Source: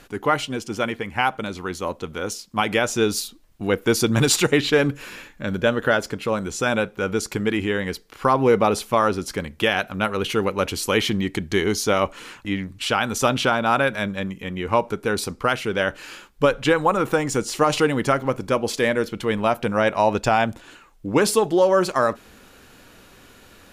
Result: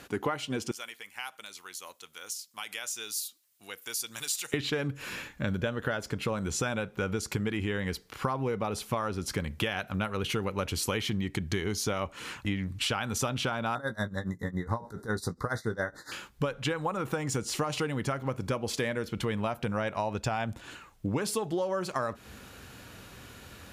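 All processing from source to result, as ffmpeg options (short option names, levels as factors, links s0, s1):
-filter_complex "[0:a]asettb=1/sr,asplit=3[s0][s1][s2];[s0]atrim=end=0.714[s3];[s1]atrim=start=0.71:end=4.54,asetpts=PTS-STARTPTS,afade=t=in:d=0.004:c=qsin,afade=t=out:st=3.826:d=0.004:c=qsin,aderivative,acompressor=threshold=0.0112:ratio=1.5:attack=3.2:release=140:knee=1:detection=peak[s4];[s2]atrim=start=4.536[s5];[s3][s4]acrossfade=d=0.004:c1=hsin:c2=qsin[s6];[s6][s5]acrossfade=d=0.004:c1=qsin:c2=hsin,asettb=1/sr,asplit=3[s7][s8][s9];[s7]atrim=end=13.754[s10];[s8]atrim=start=13.75:end=16.12,asetpts=PTS-STARTPTS,afade=t=in:d=0.004:c=qsin,afade=t=out:st=2.366:d=0.004:c=qsin,asuperstop=centerf=2700:order=20:qfactor=1.8,tremolo=f=7.2:d=0.9,asplit=2[s11][s12];[s12]adelay=18,volume=0.316[s13];[s11][s13]amix=inputs=2:normalize=0,atrim=end_sample=104517[s14];[s9]atrim=start=16.116[s15];[s10][s14]acrossfade=d=0.004:c1=hsin:c2=qsin[s16];[s16][s15]acrossfade=d=0.004:c1=qsin:c2=hsin,highpass=74,asubboost=boost=2.5:cutoff=160,acompressor=threshold=0.0447:ratio=12"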